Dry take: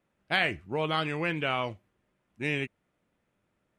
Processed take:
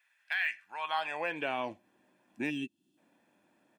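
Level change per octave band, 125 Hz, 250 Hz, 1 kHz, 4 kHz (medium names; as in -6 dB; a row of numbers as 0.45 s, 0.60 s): -17.0 dB, -4.5 dB, -3.0 dB, -8.0 dB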